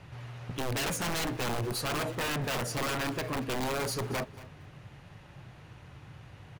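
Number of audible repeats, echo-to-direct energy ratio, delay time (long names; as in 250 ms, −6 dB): 2, −18.0 dB, 230 ms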